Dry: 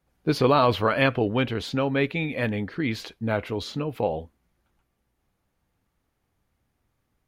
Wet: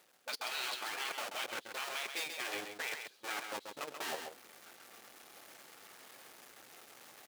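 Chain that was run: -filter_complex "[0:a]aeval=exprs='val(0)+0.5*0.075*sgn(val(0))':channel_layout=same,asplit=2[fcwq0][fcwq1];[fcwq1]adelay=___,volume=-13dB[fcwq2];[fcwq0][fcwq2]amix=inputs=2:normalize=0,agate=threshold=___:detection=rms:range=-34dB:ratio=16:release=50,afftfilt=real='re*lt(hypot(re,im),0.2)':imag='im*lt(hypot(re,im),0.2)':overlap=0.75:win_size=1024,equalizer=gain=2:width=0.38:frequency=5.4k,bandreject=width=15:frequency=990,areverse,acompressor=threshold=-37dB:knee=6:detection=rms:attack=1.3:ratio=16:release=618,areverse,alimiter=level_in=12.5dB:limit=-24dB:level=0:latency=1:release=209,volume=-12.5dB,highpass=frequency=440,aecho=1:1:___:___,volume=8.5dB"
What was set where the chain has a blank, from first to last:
23, -22dB, 134, 0.473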